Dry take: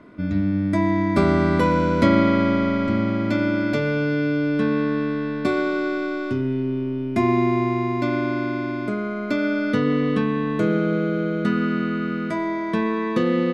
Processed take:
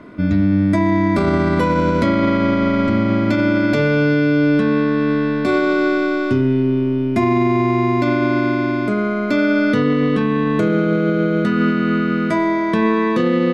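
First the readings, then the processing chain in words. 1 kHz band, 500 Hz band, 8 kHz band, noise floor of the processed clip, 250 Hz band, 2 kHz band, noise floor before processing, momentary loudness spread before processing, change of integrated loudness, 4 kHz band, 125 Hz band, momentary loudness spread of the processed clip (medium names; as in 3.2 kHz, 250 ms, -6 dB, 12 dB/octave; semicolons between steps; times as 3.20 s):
+4.5 dB, +5.0 dB, no reading, -20 dBFS, +5.0 dB, +5.5 dB, -27 dBFS, 7 LU, +5.0 dB, +4.5 dB, +5.0 dB, 3 LU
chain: peak limiter -15.5 dBFS, peak gain reduction 10 dB; trim +7.5 dB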